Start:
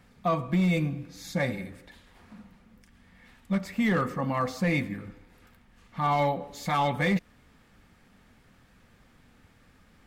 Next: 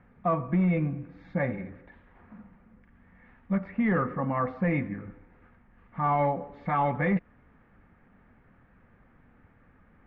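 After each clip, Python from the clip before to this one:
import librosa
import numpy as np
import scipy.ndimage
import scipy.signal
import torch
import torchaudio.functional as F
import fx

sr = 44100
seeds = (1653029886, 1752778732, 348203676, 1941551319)

y = scipy.signal.sosfilt(scipy.signal.butter(4, 2000.0, 'lowpass', fs=sr, output='sos'), x)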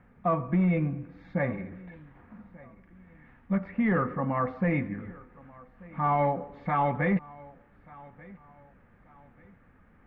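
y = fx.echo_feedback(x, sr, ms=1187, feedback_pct=35, wet_db=-22.5)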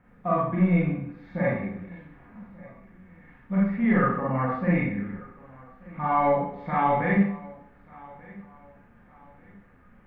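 y = fx.rev_schroeder(x, sr, rt60_s=0.54, comb_ms=31, drr_db=-6.0)
y = F.gain(torch.from_numpy(y), -3.5).numpy()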